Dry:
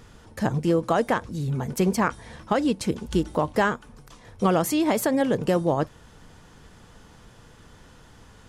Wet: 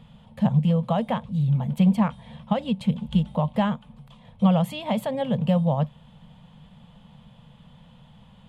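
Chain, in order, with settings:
drawn EQ curve 100 Hz 0 dB, 150 Hz +13 dB, 220 Hz +10 dB, 340 Hz −21 dB, 530 Hz +3 dB, 960 Hz +3 dB, 1,500 Hz −8 dB, 3,300 Hz +7 dB, 5,700 Hz −17 dB, 8,100 Hz −10 dB
level −5 dB

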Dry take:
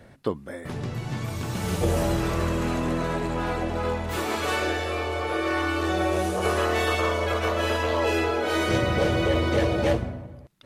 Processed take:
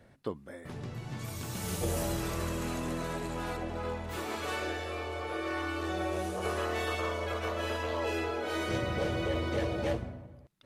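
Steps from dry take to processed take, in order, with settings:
0:01.19–0:03.57: high-shelf EQ 5,400 Hz +11.5 dB
level −9 dB

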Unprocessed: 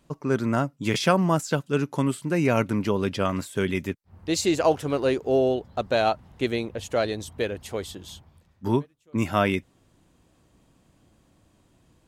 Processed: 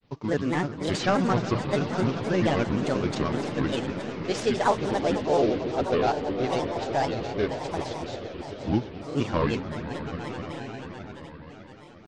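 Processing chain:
variable-slope delta modulation 32 kbit/s
echo that builds up and dies away 121 ms, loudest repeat 5, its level −14 dB
granular cloud 100 ms, grains 23 per second, spray 17 ms, pitch spread up and down by 7 semitones

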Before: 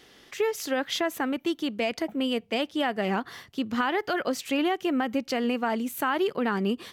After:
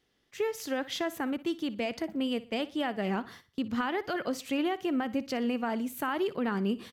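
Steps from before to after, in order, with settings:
noise gate −41 dBFS, range −15 dB
low-shelf EQ 190 Hz +9 dB
on a send: repeating echo 60 ms, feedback 36%, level −17.5 dB
on the sum: level −6 dB

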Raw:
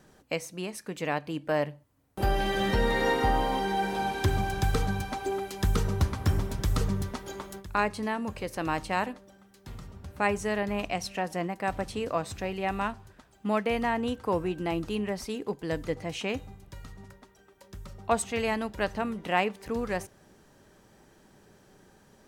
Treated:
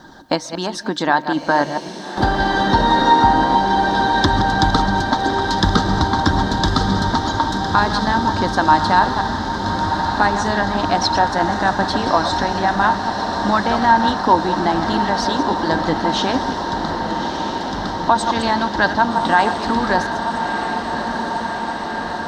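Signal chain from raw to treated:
delay that plays each chunk backwards 111 ms, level −10 dB
high-shelf EQ 6,900 Hz +4.5 dB
harmonic and percussive parts rebalanced harmonic −8 dB
drawn EQ curve 130 Hz 0 dB, 220 Hz +5 dB, 310 Hz +9 dB, 440 Hz −3 dB, 790 Hz +8 dB, 1,700 Hz +5 dB, 2,500 Hz −13 dB, 3,700 Hz +11 dB, 5,500 Hz +2 dB, 12,000 Hz −26 dB
in parallel at +2.5 dB: downward compressor, threshold −33 dBFS, peak gain reduction 16 dB
on the sum: hollow resonant body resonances 920/1,600 Hz, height 11 dB, ringing for 85 ms
bit reduction 12 bits
feedback delay with all-pass diffusion 1,242 ms, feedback 79%, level −7.5 dB
on a send at −23 dB: convolution reverb RT60 0.55 s, pre-delay 100 ms
on the sum: boost into a limiter +7.5 dB
level −1 dB

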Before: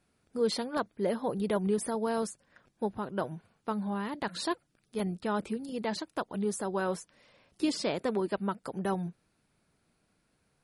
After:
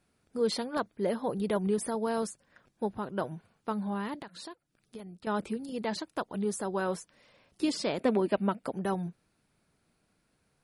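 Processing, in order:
0:04.16–0:05.27: downward compressor 10 to 1, threshold −42 dBFS, peak gain reduction 16 dB
0:07.98–0:08.73: graphic EQ with 15 bands 250 Hz +7 dB, 630 Hz +6 dB, 2,500 Hz +7 dB, 6,300 Hz −5 dB

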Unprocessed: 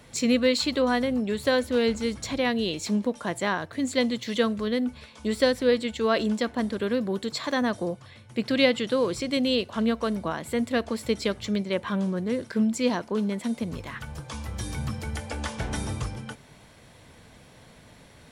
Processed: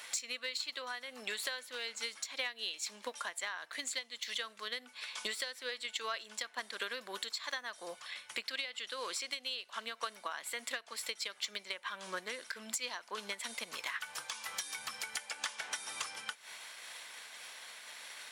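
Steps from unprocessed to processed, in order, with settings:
high-pass filter 1,400 Hz 12 dB per octave
transient designer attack +6 dB, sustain −1 dB
downward compressor 16 to 1, threshold −43 dBFS, peak gain reduction 26 dB
soft clipping −33 dBFS, distortion −20 dB
amplitude modulation by smooth noise, depth 55%
level +11 dB

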